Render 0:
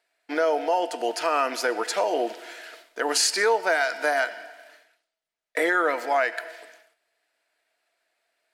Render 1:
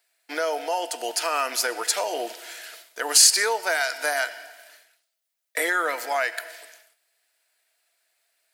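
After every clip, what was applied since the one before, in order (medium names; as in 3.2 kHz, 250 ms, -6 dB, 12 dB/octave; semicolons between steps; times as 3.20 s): RIAA curve recording; trim -2 dB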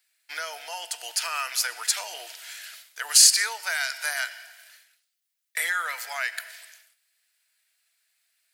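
high-pass 1.5 kHz 12 dB/octave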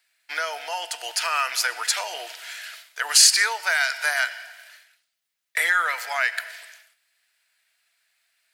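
treble shelf 4.6 kHz -10.5 dB; trim +7.5 dB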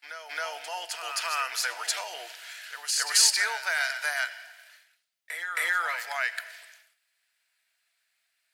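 reverse echo 269 ms -8 dB; trim -6 dB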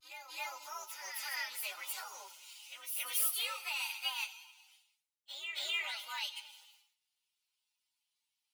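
frequency axis rescaled in octaves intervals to 129%; vibrato 0.54 Hz 28 cents; trim -4.5 dB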